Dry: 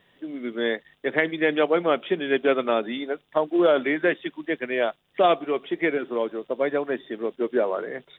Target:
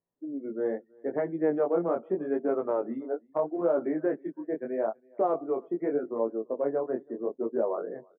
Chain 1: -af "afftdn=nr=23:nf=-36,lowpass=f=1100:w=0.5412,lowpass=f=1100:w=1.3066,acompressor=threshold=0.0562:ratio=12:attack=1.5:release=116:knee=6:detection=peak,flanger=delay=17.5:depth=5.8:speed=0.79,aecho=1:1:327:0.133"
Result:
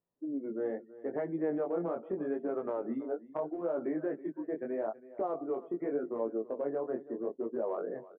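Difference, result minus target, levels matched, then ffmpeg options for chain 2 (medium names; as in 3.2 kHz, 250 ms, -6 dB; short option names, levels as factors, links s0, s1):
compression: peak gain reduction +8.5 dB; echo-to-direct +10.5 dB
-af "afftdn=nr=23:nf=-36,lowpass=f=1100:w=0.5412,lowpass=f=1100:w=1.3066,acompressor=threshold=0.168:ratio=12:attack=1.5:release=116:knee=6:detection=peak,flanger=delay=17.5:depth=5.8:speed=0.79,aecho=1:1:327:0.0398"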